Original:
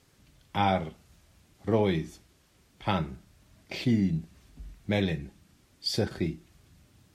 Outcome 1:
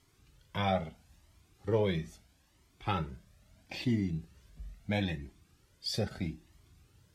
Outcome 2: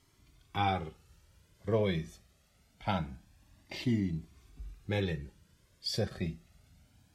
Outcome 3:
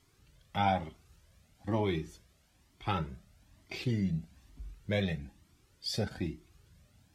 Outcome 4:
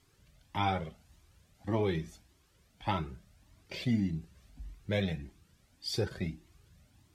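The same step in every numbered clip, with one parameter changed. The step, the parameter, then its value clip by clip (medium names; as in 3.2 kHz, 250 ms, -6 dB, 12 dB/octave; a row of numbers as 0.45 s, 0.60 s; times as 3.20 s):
Shepard-style flanger, rate: 0.76 Hz, 0.25 Hz, 1.1 Hz, 1.7 Hz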